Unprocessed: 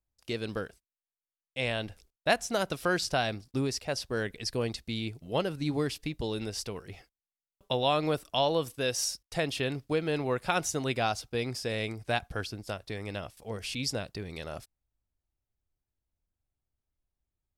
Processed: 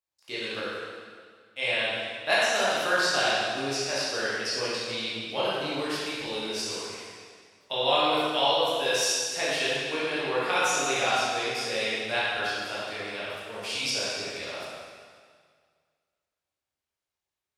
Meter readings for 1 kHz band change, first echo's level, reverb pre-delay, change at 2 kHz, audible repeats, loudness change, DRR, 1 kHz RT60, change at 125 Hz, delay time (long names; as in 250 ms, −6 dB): +5.5 dB, no echo audible, 8 ms, +8.0 dB, no echo audible, +5.0 dB, −10.0 dB, 1.9 s, −9.0 dB, no echo audible